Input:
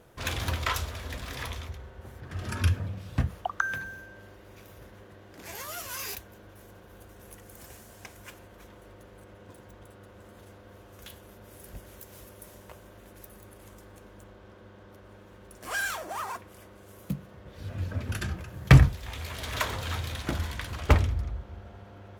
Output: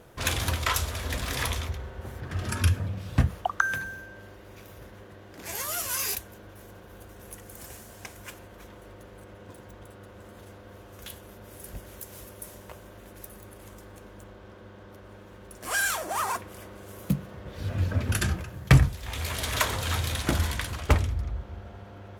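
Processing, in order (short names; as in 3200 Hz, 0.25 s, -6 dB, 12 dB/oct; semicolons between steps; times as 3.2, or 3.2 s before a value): dynamic EQ 9700 Hz, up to +7 dB, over -54 dBFS, Q 0.78; vocal rider within 5 dB 0.5 s; gain +1.5 dB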